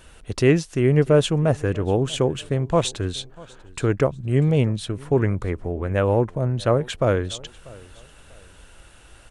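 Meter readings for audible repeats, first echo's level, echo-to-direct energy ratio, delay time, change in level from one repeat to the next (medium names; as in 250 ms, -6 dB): 2, -23.0 dB, -22.5 dB, 642 ms, -10.0 dB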